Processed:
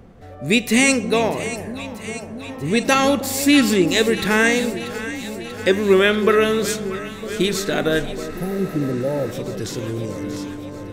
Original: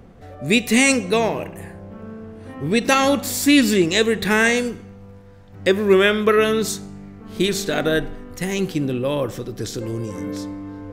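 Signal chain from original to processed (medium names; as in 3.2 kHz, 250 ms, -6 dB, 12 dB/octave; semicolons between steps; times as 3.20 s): echo whose repeats swap between lows and highs 319 ms, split 810 Hz, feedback 83%, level -11.5 dB; spectral replace 8.34–9.29 s, 920–10000 Hz before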